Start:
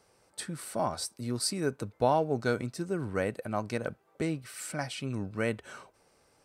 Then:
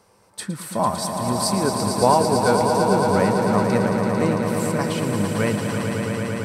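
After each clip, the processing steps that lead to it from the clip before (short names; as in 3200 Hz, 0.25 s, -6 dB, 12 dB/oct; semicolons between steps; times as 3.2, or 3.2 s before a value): thirty-one-band EQ 100 Hz +6 dB, 200 Hz +9 dB, 500 Hz +3 dB, 1000 Hz +9 dB, 12500 Hz +5 dB; swelling echo 0.112 s, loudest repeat 5, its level -7.5 dB; gain +5.5 dB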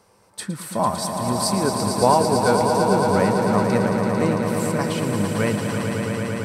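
nothing audible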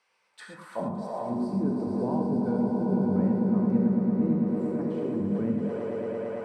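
auto-wah 220–2500 Hz, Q 2, down, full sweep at -17 dBFS; non-linear reverb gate 0.15 s flat, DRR 1.5 dB; gain -3.5 dB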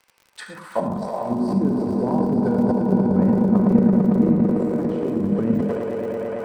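transient shaper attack +7 dB, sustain +11 dB; crackle 56/s -41 dBFS; gain +4.5 dB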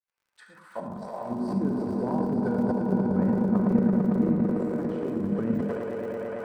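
opening faded in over 1.63 s; bell 1500 Hz +5 dB 0.75 oct; gain -6.5 dB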